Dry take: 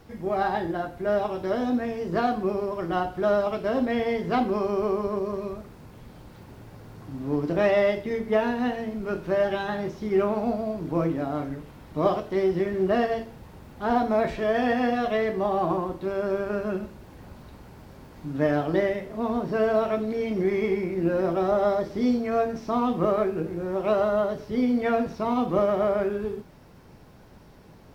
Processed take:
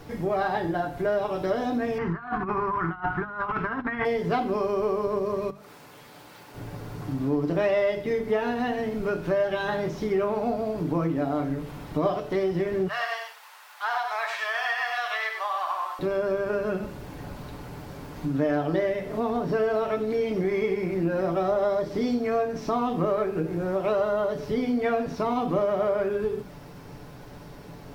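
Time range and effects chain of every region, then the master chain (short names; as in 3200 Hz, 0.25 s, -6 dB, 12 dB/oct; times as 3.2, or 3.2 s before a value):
1.98–4.05 EQ curve 140 Hz 0 dB, 360 Hz -5 dB, 570 Hz -18 dB, 920 Hz +6 dB, 1400 Hz +9 dB, 1900 Hz +5 dB, 3200 Hz -10 dB, 8200 Hz -25 dB + negative-ratio compressor -32 dBFS, ratio -0.5
5.5–6.55 HPF 920 Hz 6 dB/oct + compressor 12:1, threshold -50 dBFS
12.88–15.99 HPF 1000 Hz 24 dB/oct + echo 95 ms -6 dB
whole clip: notches 50/100/150/200/250 Hz; comb 6.9 ms, depth 40%; compressor 2.5:1, threshold -33 dBFS; gain +7 dB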